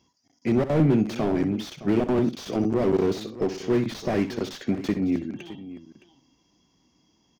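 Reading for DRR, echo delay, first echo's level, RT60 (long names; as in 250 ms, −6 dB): no reverb audible, 63 ms, −12.5 dB, no reverb audible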